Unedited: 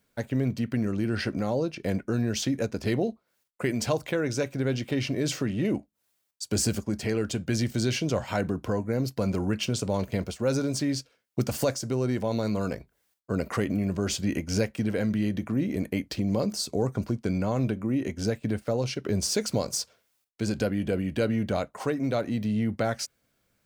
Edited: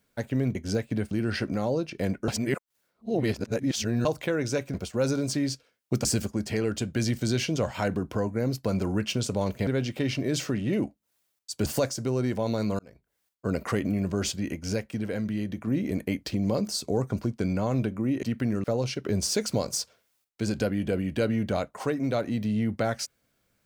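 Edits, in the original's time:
0:00.55–0:00.96: swap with 0:18.08–0:18.64
0:02.13–0:03.90: reverse
0:04.59–0:06.58: swap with 0:10.20–0:11.51
0:12.64–0:13.31: fade in
0:14.17–0:15.52: clip gain −3.5 dB

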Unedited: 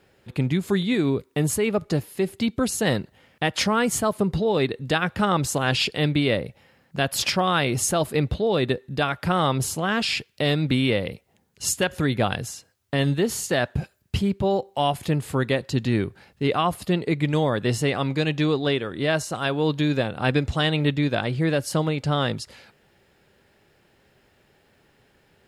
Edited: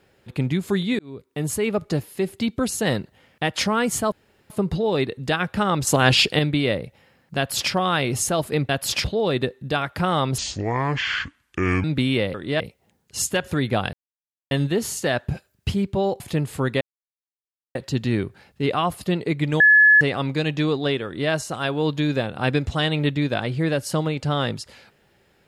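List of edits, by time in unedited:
0:00.99–0:01.64: fade in
0:04.12: splice in room tone 0.38 s
0:05.49–0:06.01: clip gain +6 dB
0:06.99–0:07.34: duplicate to 0:08.31
0:09.65–0:10.57: play speed 63%
0:12.40–0:12.98: silence
0:14.67–0:14.95: remove
0:15.56: splice in silence 0.94 s
0:17.41–0:17.82: beep over 1,710 Hz −9.5 dBFS
0:18.86–0:19.12: duplicate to 0:11.07

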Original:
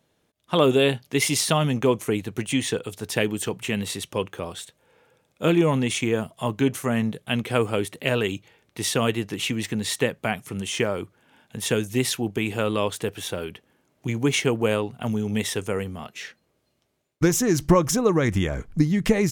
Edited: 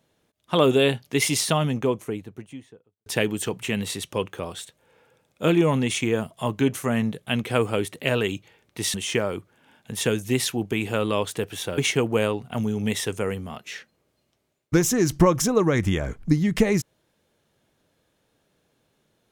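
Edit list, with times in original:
0:01.25–0:03.06: fade out and dull
0:08.94–0:10.59: remove
0:13.43–0:14.27: remove

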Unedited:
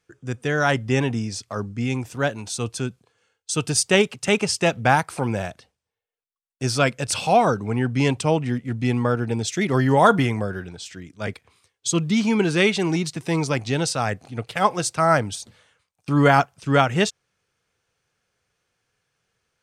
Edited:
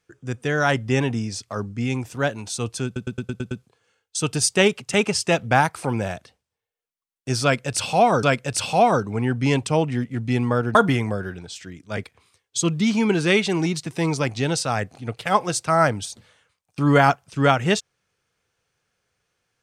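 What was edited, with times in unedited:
0:02.85: stutter 0.11 s, 7 plays
0:06.77–0:07.57: repeat, 2 plays
0:09.29–0:10.05: remove

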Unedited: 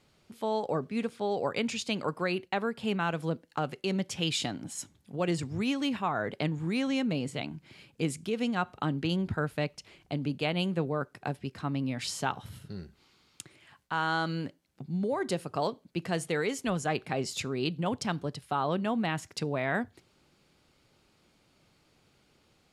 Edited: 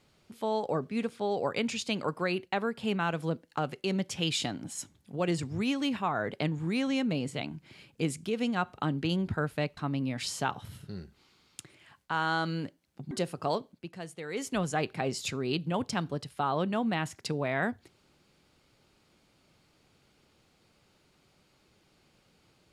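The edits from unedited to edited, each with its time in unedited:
0:09.77–0:11.58: remove
0:14.92–0:15.23: remove
0:15.83–0:16.56: duck −10.5 dB, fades 0.16 s

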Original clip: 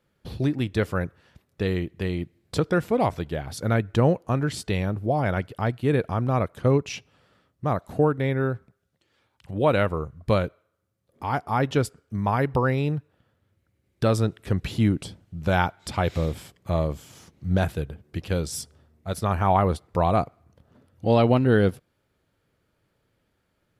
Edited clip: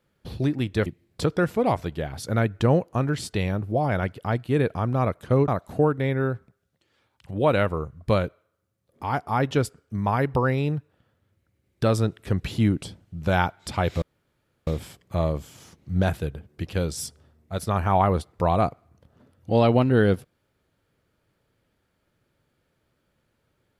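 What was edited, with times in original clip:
0:00.86–0:02.20: remove
0:06.82–0:07.68: remove
0:16.22: splice in room tone 0.65 s

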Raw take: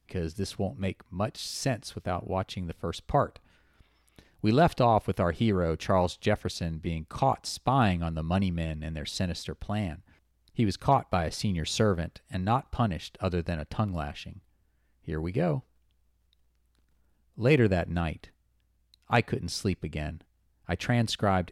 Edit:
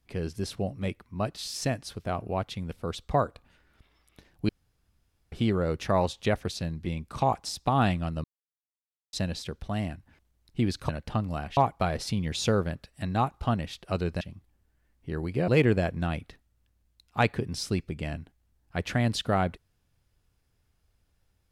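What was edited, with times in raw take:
0:04.49–0:05.32: fill with room tone
0:08.24–0:09.13: silence
0:13.53–0:14.21: move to 0:10.89
0:15.48–0:17.42: remove

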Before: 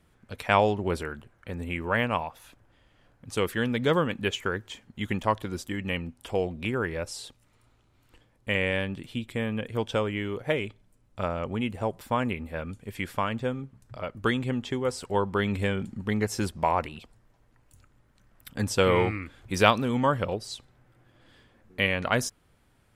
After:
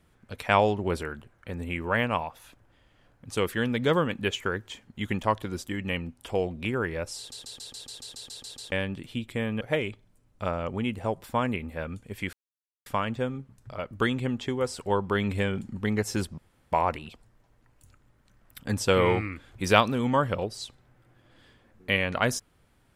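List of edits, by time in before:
0:07.18: stutter in place 0.14 s, 11 plays
0:09.61–0:10.38: remove
0:13.10: splice in silence 0.53 s
0:16.62: splice in room tone 0.34 s

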